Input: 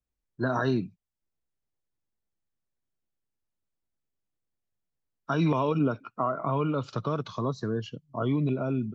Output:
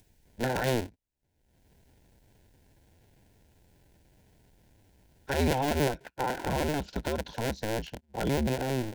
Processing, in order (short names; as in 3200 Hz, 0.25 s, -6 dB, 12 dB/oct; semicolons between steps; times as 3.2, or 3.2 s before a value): cycle switcher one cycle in 2, inverted; upward compressor, threshold -43 dBFS; Butterworth band-stop 1200 Hz, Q 2.9; gain -1.5 dB